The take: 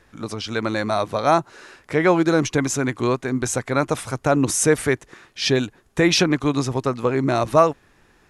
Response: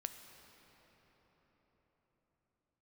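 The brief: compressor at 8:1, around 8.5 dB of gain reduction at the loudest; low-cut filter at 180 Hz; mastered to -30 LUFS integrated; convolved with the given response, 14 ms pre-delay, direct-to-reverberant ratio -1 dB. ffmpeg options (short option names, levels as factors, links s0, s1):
-filter_complex "[0:a]highpass=180,acompressor=threshold=0.112:ratio=8,asplit=2[s0][s1];[1:a]atrim=start_sample=2205,adelay=14[s2];[s1][s2]afir=irnorm=-1:irlink=0,volume=1.5[s3];[s0][s3]amix=inputs=2:normalize=0,volume=0.398"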